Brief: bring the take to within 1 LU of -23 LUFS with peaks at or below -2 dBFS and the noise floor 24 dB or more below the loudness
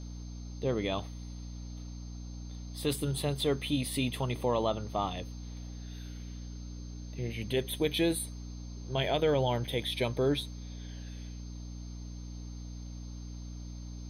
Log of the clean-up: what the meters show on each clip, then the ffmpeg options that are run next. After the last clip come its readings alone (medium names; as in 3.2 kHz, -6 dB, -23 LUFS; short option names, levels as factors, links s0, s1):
hum 60 Hz; highest harmonic 300 Hz; hum level -40 dBFS; steady tone 6.3 kHz; tone level -58 dBFS; loudness -34.5 LUFS; peak level -16.5 dBFS; loudness target -23.0 LUFS
-> -af "bandreject=f=60:t=h:w=4,bandreject=f=120:t=h:w=4,bandreject=f=180:t=h:w=4,bandreject=f=240:t=h:w=4,bandreject=f=300:t=h:w=4"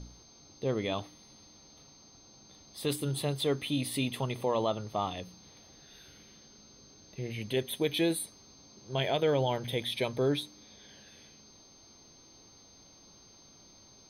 hum not found; steady tone 6.3 kHz; tone level -58 dBFS
-> -af "bandreject=f=6300:w=30"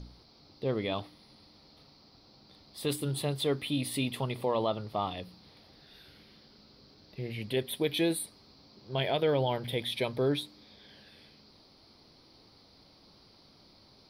steady tone not found; loudness -32.0 LUFS; peak level -16.0 dBFS; loudness target -23.0 LUFS
-> -af "volume=2.82"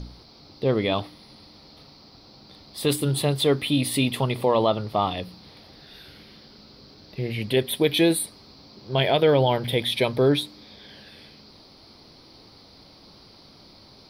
loudness -23.0 LUFS; peak level -7.0 dBFS; noise floor -51 dBFS